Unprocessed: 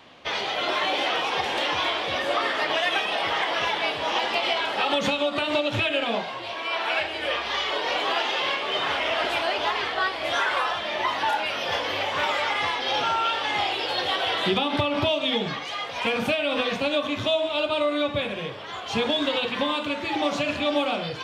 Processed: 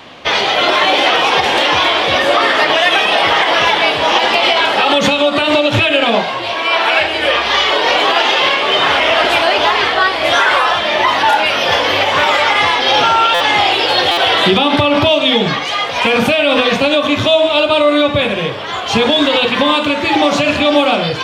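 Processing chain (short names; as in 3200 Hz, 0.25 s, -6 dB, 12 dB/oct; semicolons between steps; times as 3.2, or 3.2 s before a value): maximiser +15 dB; stuck buffer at 13.34/14.11, samples 256, times 10; gain -1 dB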